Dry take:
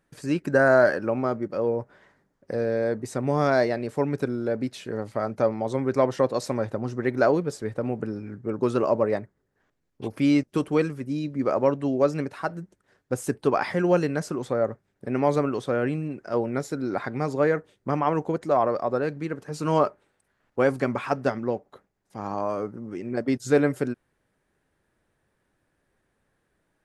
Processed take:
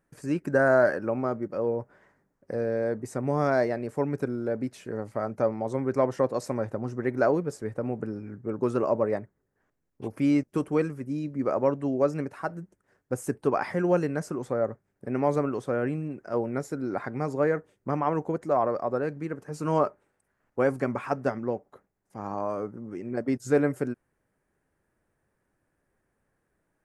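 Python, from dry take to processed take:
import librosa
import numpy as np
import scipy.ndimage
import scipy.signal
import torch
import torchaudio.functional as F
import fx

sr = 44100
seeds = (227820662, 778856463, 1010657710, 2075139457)

y = fx.peak_eq(x, sr, hz=3700.0, db=-10.0, octaves=0.93)
y = y * 10.0 ** (-2.5 / 20.0)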